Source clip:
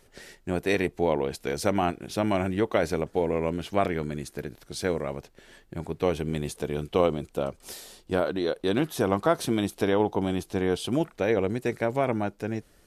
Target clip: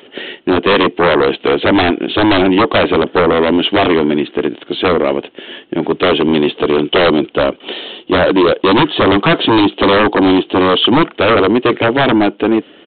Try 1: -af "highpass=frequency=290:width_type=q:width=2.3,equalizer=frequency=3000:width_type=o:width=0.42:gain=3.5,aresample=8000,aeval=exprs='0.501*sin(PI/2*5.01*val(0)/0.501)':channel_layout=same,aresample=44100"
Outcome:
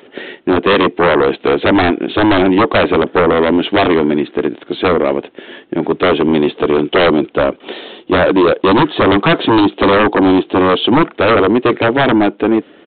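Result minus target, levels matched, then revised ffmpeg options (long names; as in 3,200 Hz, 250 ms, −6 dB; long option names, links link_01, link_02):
4,000 Hz band −4.0 dB
-af "highpass=frequency=290:width_type=q:width=2.3,equalizer=frequency=3000:width_type=o:width=0.42:gain=12.5,aresample=8000,aeval=exprs='0.501*sin(PI/2*5.01*val(0)/0.501)':channel_layout=same,aresample=44100"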